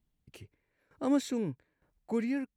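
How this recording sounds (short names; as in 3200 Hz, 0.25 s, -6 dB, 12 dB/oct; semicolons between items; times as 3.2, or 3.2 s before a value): tremolo saw down 1.1 Hz, depth 80%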